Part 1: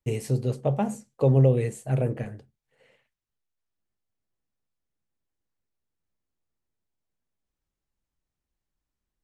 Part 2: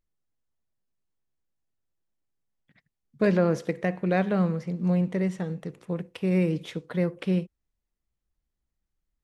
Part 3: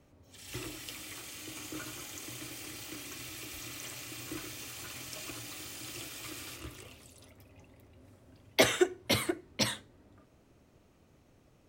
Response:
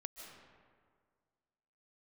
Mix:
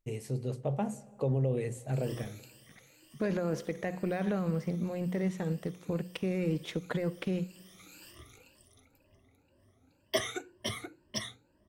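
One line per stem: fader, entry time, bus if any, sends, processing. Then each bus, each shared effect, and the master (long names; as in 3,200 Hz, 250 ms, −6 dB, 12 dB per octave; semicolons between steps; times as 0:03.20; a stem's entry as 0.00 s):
−10.5 dB, 0.00 s, bus A, send −10.5 dB, no processing
−4.5 dB, 0.00 s, bus A, send −16.5 dB, brickwall limiter −22 dBFS, peak gain reduction 11 dB; transient designer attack +7 dB, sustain −3 dB
−10.5 dB, 1.55 s, no bus, no send, rippled gain that drifts along the octave scale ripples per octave 1.3, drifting +2 Hz, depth 17 dB; automatic ducking −10 dB, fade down 0.45 s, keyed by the second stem
bus A: 0.0 dB, automatic gain control gain up to 4 dB; brickwall limiter −23 dBFS, peak gain reduction 7.5 dB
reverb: on, RT60 1.9 s, pre-delay 110 ms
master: mains-hum notches 60/120/180 Hz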